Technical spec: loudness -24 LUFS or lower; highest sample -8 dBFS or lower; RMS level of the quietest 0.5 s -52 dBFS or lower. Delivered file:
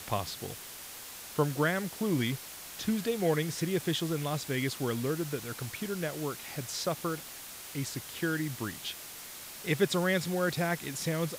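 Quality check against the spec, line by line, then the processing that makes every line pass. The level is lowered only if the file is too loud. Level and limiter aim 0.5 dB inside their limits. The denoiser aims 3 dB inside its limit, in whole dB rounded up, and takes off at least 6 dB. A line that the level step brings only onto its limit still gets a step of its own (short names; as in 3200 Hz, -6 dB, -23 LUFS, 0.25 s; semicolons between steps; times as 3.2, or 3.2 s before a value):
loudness -33.0 LUFS: OK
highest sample -14.0 dBFS: OK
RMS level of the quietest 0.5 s -45 dBFS: fail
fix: denoiser 10 dB, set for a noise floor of -45 dBFS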